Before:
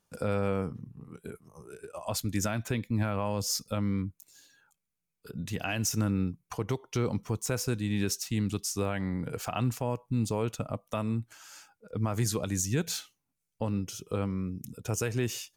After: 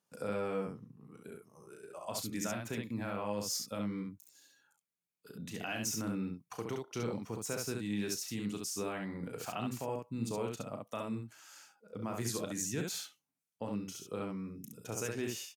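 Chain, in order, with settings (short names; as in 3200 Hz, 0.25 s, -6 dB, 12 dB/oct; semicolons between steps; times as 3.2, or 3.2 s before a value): HPF 170 Hz 12 dB/oct; on a send: early reflections 35 ms -8.5 dB, 68 ms -3.5 dB; on the sum: gain -7 dB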